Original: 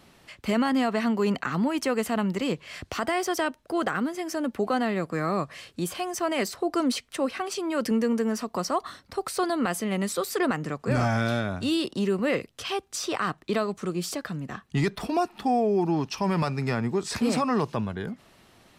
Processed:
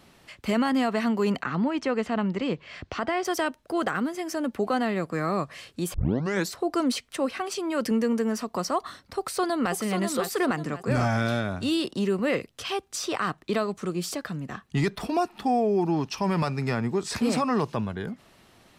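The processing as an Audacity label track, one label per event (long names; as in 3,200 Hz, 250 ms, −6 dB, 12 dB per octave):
1.430000	3.250000	high-frequency loss of the air 130 metres
5.940000	5.940000	tape start 0.57 s
9.050000	9.740000	delay throw 540 ms, feedback 35%, level −6.5 dB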